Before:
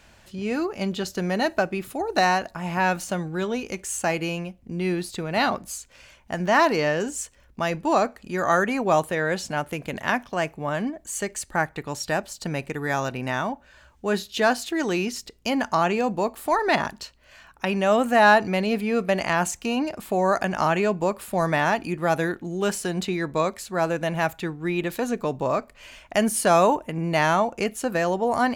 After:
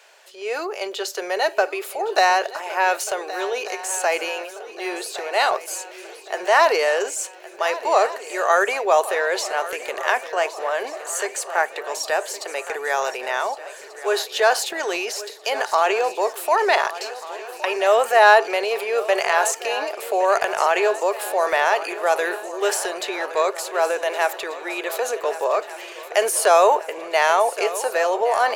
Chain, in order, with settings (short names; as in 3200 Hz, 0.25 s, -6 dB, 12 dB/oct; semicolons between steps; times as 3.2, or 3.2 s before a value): Chebyshev high-pass 400 Hz, order 5; transient shaper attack 0 dB, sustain +5 dB; swung echo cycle 1.488 s, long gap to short 3:1, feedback 55%, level -15 dB; gain +4 dB